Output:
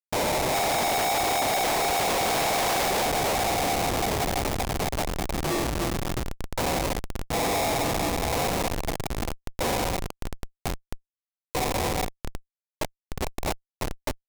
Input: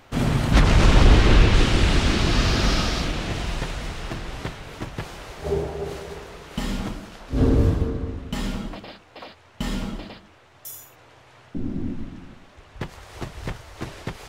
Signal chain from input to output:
on a send: feedback delay with all-pass diffusion 639 ms, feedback 72%, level −12.5 dB
on the sum: ring modulation 750 Hz
comparator with hysteresis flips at −28.5 dBFS
bass and treble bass −4 dB, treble +4 dB

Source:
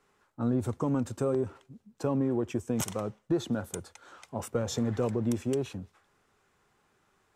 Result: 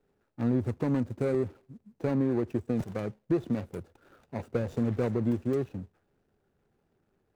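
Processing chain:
running median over 41 samples
level +1.5 dB

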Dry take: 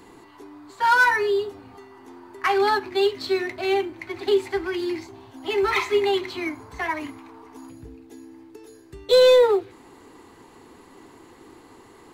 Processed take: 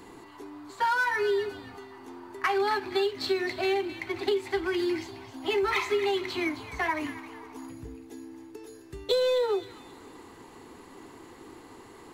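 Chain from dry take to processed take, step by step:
downward compressor 10 to 1, threshold −23 dBFS, peak gain reduction 11.5 dB
on a send: delay with a high-pass on its return 264 ms, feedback 32%, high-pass 1,500 Hz, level −11 dB

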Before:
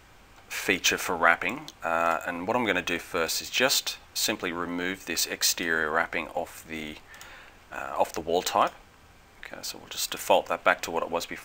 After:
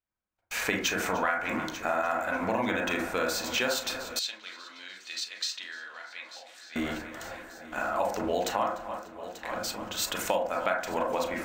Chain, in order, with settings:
noise gate −46 dBFS, range −43 dB
echo machine with several playback heads 296 ms, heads first and third, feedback 55%, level −20 dB
convolution reverb RT60 0.35 s, pre-delay 33 ms, DRR −0.5 dB
downward compressor 6 to 1, threshold −25 dBFS, peak gain reduction 13 dB
0:04.19–0:06.76: resonant band-pass 3,900 Hz, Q 2

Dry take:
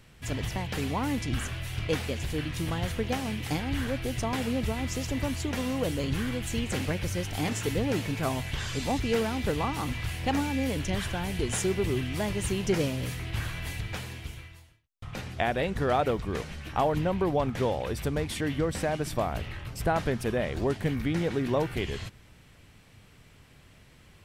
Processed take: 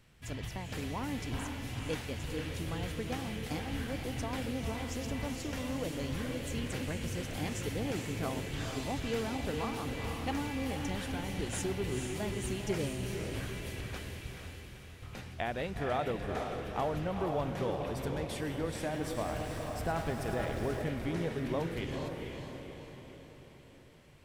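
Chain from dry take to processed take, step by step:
feedback delay with all-pass diffusion 467 ms, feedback 52%, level −4.5 dB
0:18.82–0:20.82: feedback echo at a low word length 105 ms, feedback 80%, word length 8 bits, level −9.5 dB
level −8 dB

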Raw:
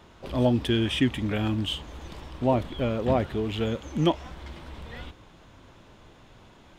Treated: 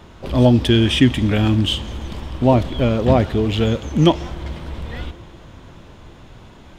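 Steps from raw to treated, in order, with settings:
low-shelf EQ 250 Hz +5.5 dB
convolution reverb RT60 4.8 s, pre-delay 43 ms, DRR 18 dB
dynamic equaliser 5,200 Hz, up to +5 dB, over −48 dBFS, Q 0.95
level +7 dB

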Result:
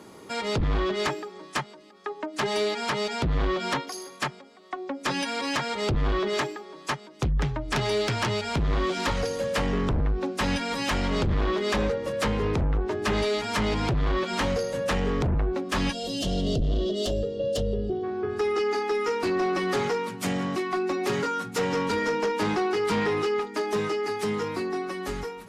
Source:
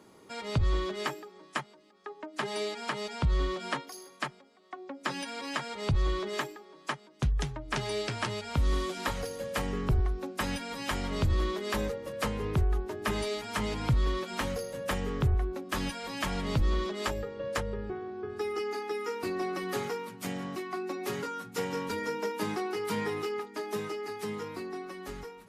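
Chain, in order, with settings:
treble cut that deepens with the level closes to 3,000 Hz, closed at −24.5 dBFS
harmonic generator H 5 −8 dB, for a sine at −18 dBFS
gain on a spectral selection 0:15.92–0:18.04, 750–2,700 Hz −20 dB

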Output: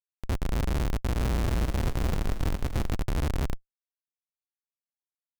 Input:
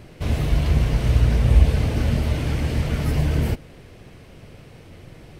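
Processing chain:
high shelf with overshoot 2,700 Hz −12.5 dB, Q 1.5
comparator with hysteresis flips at −16.5 dBFS
0:00.87–0:02.96: echo with shifted repeats 272 ms, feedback 48%, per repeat −31 Hz, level −10 dB
level −5 dB

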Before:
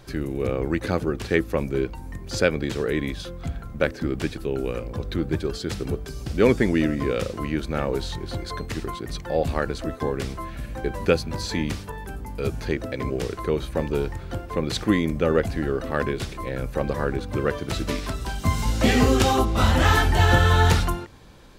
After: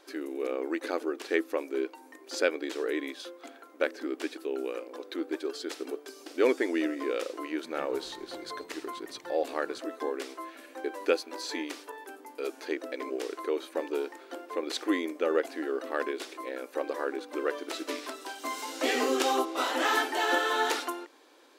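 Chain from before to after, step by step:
linear-phase brick-wall high-pass 260 Hz
0:07.37–0:09.79: echo with shifted repeats 131 ms, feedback 60%, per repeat −67 Hz, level −21.5 dB
level −5.5 dB

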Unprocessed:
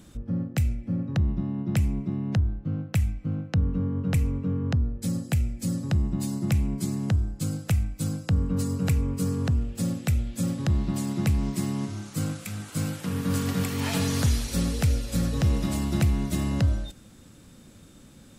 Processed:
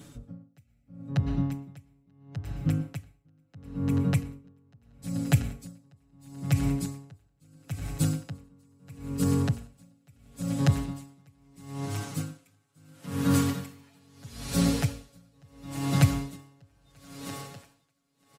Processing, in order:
high-pass filter 49 Hz
comb filter 7.1 ms, depth 100%
feedback echo with a high-pass in the loop 937 ms, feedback 78%, high-pass 260 Hz, level −11.5 dB
dense smooth reverb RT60 0.62 s, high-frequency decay 0.9×, pre-delay 100 ms, DRR 12.5 dB
tremolo with a sine in dB 0.75 Hz, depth 37 dB

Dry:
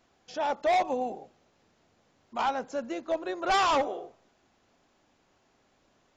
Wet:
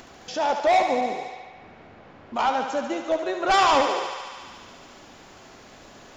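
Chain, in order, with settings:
tape wow and flutter 27 cents
in parallel at −2 dB: upward compression, threshold −29 dBFS
on the sum: feedback echo with a high-pass in the loop 72 ms, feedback 83%, high-pass 420 Hz, level −7.5 dB
0:01.01–0:02.36: low-pass that shuts in the quiet parts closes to 1,600 Hz, open at −25.5 dBFS

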